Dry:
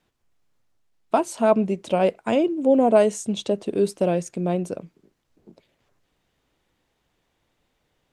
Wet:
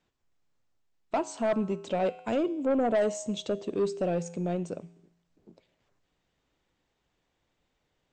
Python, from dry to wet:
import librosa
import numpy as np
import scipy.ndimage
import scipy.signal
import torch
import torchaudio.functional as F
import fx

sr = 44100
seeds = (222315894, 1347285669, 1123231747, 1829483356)

y = fx.brickwall_lowpass(x, sr, high_hz=8300.0)
y = fx.comb_fb(y, sr, f0_hz=57.0, decay_s=0.92, harmonics='odd', damping=0.0, mix_pct=50)
y = 10.0 ** (-20.0 / 20.0) * np.tanh(y / 10.0 ** (-20.0 / 20.0))